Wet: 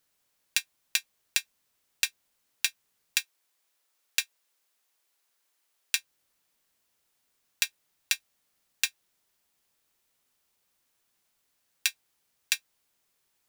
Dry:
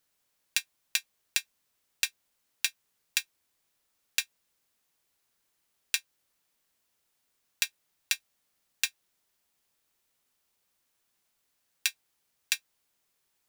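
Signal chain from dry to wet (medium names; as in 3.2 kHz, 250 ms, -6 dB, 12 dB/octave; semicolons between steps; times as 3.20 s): 3.20–5.97 s: Bessel high-pass 450 Hz, order 2; trim +1.5 dB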